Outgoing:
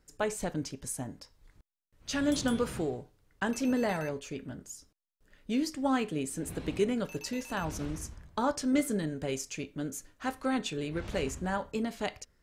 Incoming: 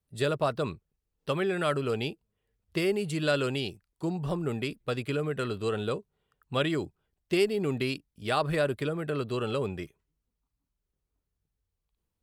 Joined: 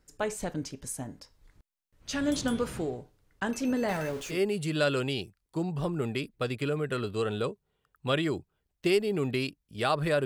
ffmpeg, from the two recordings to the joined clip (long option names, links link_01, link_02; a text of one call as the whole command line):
ffmpeg -i cue0.wav -i cue1.wav -filter_complex "[0:a]asettb=1/sr,asplit=3[link_01][link_02][link_03];[link_01]atrim=end=3.884[link_04];[link_02]atrim=start=3.88:end=4.41,asetpts=PTS-STARTPTS,afade=type=in:duration=0.004:curve=qsin,afade=type=out:start_time=0.526:duration=0.004:curve=qsin,aeval=exprs='val(0)+0.5*0.0112*sgn(val(0))':channel_layout=same[link_05];[link_03]atrim=start=4.406[link_06];[link_04][link_05]acrossfade=duration=0.004:curve1=hsin:curve2=qsin[link_07];[link_07][link_06]acrossfade=duration=0.004:curve1=qsin:curve2=hsin,apad=whole_dur=10.25,atrim=end=10.25,atrim=end=4.41,asetpts=PTS-STARTPTS[link_08];[1:a]atrim=start=2.74:end=8.72,asetpts=PTS-STARTPTS[link_09];[link_08][link_09]acrossfade=duration=0.14:curve1=tri:curve2=tri" out.wav